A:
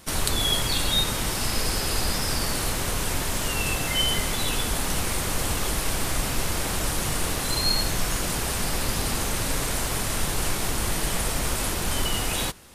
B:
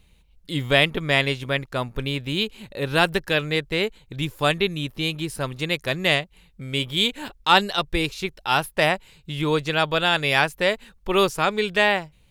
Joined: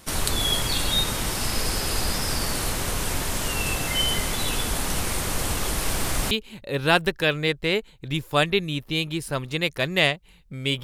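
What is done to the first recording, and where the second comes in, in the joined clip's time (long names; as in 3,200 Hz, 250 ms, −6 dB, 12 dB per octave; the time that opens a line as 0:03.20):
A
0:05.81–0:06.31: mu-law and A-law mismatch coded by mu
0:06.31: continue with B from 0:02.39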